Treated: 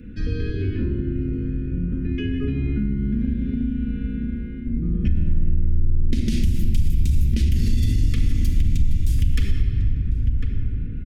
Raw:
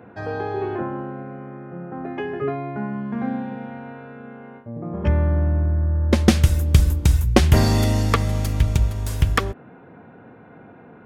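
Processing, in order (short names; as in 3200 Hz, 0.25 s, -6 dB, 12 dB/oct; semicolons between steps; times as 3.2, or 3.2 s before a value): octaver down 2 oct, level -3 dB; Chebyshev band-stop 260–2600 Hz, order 2; outdoor echo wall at 180 m, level -14 dB; reverb RT60 1.9 s, pre-delay 4 ms, DRR 1.5 dB; limiter -9.5 dBFS, peak gain reduction 11 dB; compressor 4:1, threshold -27 dBFS, peak gain reduction 12.5 dB; low shelf 91 Hz +9.5 dB; gain +4 dB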